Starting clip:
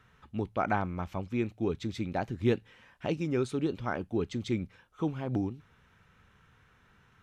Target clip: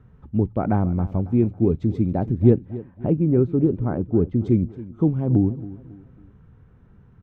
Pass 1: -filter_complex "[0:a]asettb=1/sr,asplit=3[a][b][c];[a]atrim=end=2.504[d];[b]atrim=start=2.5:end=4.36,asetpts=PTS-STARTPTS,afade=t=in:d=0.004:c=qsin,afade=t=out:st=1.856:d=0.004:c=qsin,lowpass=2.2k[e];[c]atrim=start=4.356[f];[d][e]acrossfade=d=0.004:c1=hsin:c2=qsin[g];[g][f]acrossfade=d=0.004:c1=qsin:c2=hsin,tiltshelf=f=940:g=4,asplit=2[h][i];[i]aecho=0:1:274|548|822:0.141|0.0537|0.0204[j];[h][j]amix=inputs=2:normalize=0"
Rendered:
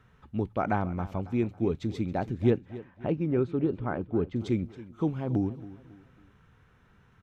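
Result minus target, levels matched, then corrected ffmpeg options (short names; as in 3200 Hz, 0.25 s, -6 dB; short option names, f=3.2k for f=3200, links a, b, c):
1000 Hz band +7.5 dB
-filter_complex "[0:a]asettb=1/sr,asplit=3[a][b][c];[a]atrim=end=2.504[d];[b]atrim=start=2.5:end=4.36,asetpts=PTS-STARTPTS,afade=t=in:d=0.004:c=qsin,afade=t=out:st=1.856:d=0.004:c=qsin,lowpass=2.2k[e];[c]atrim=start=4.356[f];[d][e]acrossfade=d=0.004:c1=hsin:c2=qsin[g];[g][f]acrossfade=d=0.004:c1=qsin:c2=hsin,tiltshelf=f=940:g=15.5,asplit=2[h][i];[i]aecho=0:1:274|548|822:0.141|0.0537|0.0204[j];[h][j]amix=inputs=2:normalize=0"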